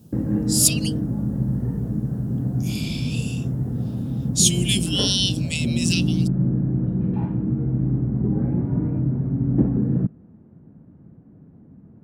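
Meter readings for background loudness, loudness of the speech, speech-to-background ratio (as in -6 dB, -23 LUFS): -23.5 LUFS, -22.0 LUFS, 1.5 dB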